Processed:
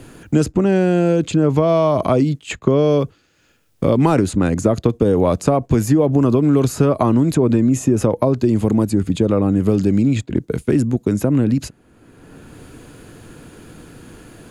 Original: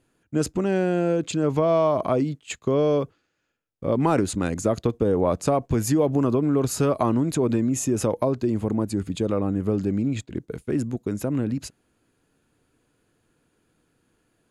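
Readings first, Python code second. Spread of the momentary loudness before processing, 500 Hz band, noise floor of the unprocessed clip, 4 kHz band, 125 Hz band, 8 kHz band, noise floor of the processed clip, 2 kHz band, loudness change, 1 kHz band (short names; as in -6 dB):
7 LU, +6.0 dB, -71 dBFS, +5.0 dB, +9.0 dB, +1.5 dB, -57 dBFS, +6.0 dB, +7.0 dB, +4.5 dB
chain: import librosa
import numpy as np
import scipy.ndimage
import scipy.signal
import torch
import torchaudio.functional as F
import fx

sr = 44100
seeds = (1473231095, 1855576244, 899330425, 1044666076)

y = fx.low_shelf(x, sr, hz=350.0, db=5.0)
y = fx.band_squash(y, sr, depth_pct=70)
y = F.gain(torch.from_numpy(y), 4.0).numpy()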